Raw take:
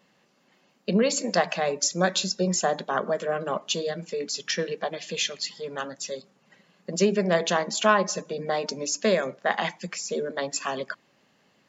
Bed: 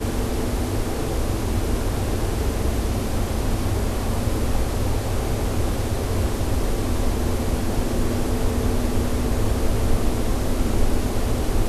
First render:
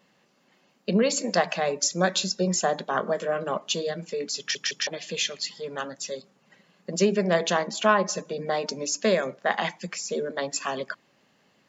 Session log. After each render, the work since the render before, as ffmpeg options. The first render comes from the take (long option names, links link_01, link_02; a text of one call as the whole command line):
ffmpeg -i in.wav -filter_complex "[0:a]asettb=1/sr,asplit=3[link_01][link_02][link_03];[link_01]atrim=end=2.924[link_04];[link_02]atrim=start=2.92:end=3.44,asetpts=PTS-STARTPTS,afade=type=in:duration=0.004:curve=qsin,afade=type=out:start_time=0.516:duration=0.004:curve=qsin,asplit=2[link_05][link_06];[link_06]adelay=23,volume=-12dB[link_07];[link_05][link_07]amix=inputs=2:normalize=0,atrim=end_sample=22932[link_08];[link_03]atrim=start=3.436[link_09];[link_04][link_08]acrossfade=duration=0.004:curve1=hsin:curve2=qsin[link_10];[link_10][link_09]acrossfade=duration=0.004:curve1=qsin:curve2=hsin,asettb=1/sr,asplit=3[link_11][link_12][link_13];[link_11]atrim=end=7.674[link_14];[link_12]atrim=start=7.67:end=8.09,asetpts=PTS-STARTPTS,afade=type=in:duration=0.004:curve=qsin,afade=type=out:start_time=0.416:duration=0.004:curve=qsin,highshelf=frequency=4600:gain=-7.5[link_15];[link_13]atrim=start=8.086[link_16];[link_14][link_15]acrossfade=duration=0.004:curve1=hsin:curve2=qsin[link_17];[link_17][link_16]acrossfade=duration=0.004:curve1=qsin:curve2=hsin,asplit=4[link_18][link_19][link_20][link_21];[link_18]atrim=end=4.552[link_22];[link_19]atrim=start=4.388:end=4.552[link_23];[link_20]atrim=start=4.388:end=4.552[link_24];[link_21]atrim=start=4.868[link_25];[link_22][link_23]acrossfade=duration=0.004:curve1=hsin:curve2=hsin[link_26];[link_26][link_24]acrossfade=duration=0.004:curve1=hsin:curve2=hsin[link_27];[link_27][link_25]acrossfade=duration=0.004:curve1=hsin:curve2=hsin" out.wav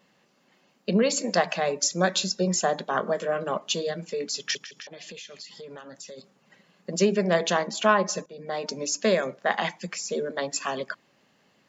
ffmpeg -i in.wav -filter_complex "[0:a]asplit=3[link_01][link_02][link_03];[link_01]afade=type=out:start_time=4.57:duration=0.02[link_04];[link_02]acompressor=threshold=-38dB:ratio=12:attack=3.2:release=140:knee=1:detection=peak,afade=type=in:start_time=4.57:duration=0.02,afade=type=out:start_time=6.17:duration=0.02[link_05];[link_03]afade=type=in:start_time=6.17:duration=0.02[link_06];[link_04][link_05][link_06]amix=inputs=3:normalize=0,asplit=2[link_07][link_08];[link_07]atrim=end=8.26,asetpts=PTS-STARTPTS,afade=type=out:start_time=8.256:duration=0.004:curve=hsin:silence=0.149624[link_09];[link_08]atrim=start=8.26,asetpts=PTS-STARTPTS,afade=type=in:duration=0.52:silence=0.149624[link_10];[link_09][link_10]concat=n=2:v=0:a=1" out.wav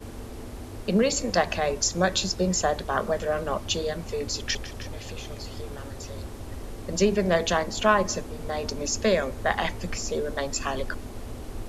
ffmpeg -i in.wav -i bed.wav -filter_complex "[1:a]volume=-15dB[link_01];[0:a][link_01]amix=inputs=2:normalize=0" out.wav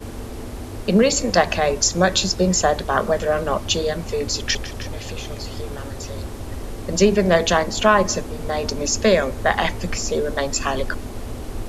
ffmpeg -i in.wav -af "volume=6.5dB,alimiter=limit=-2dB:level=0:latency=1" out.wav